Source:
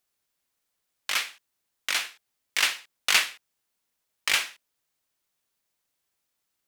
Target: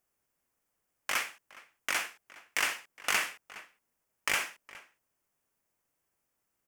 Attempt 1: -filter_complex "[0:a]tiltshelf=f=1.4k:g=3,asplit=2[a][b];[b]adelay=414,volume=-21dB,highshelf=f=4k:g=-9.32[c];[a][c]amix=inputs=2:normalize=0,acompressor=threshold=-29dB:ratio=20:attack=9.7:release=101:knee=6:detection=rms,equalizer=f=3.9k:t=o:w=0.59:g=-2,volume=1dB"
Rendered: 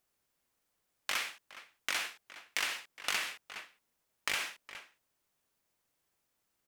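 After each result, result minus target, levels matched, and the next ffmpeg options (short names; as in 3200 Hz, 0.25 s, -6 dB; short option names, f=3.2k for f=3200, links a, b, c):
compressor: peak gain reduction +7.5 dB; 4000 Hz band +3.0 dB
-filter_complex "[0:a]tiltshelf=f=1.4k:g=3,asplit=2[a][b];[b]adelay=414,volume=-21dB,highshelf=f=4k:g=-9.32[c];[a][c]amix=inputs=2:normalize=0,acompressor=threshold=-21dB:ratio=20:attack=9.7:release=101:knee=6:detection=rms,equalizer=f=3.9k:t=o:w=0.59:g=-2,volume=1dB"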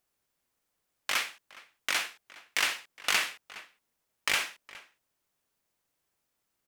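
4000 Hz band +3.0 dB
-filter_complex "[0:a]tiltshelf=f=1.4k:g=3,asplit=2[a][b];[b]adelay=414,volume=-21dB,highshelf=f=4k:g=-9.32[c];[a][c]amix=inputs=2:normalize=0,acompressor=threshold=-21dB:ratio=20:attack=9.7:release=101:knee=6:detection=rms,equalizer=f=3.9k:t=o:w=0.59:g=-12,volume=1dB"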